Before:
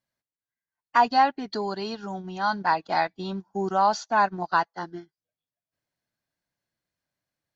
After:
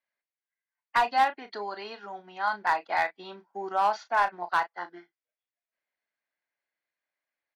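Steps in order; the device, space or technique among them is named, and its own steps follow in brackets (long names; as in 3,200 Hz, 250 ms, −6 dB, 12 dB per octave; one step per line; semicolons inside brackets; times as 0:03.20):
megaphone (band-pass filter 490–3,300 Hz; parametric band 2,100 Hz +8 dB 0.54 octaves; hard clipping −14 dBFS, distortion −18 dB; double-tracking delay 34 ms −11 dB)
level −3 dB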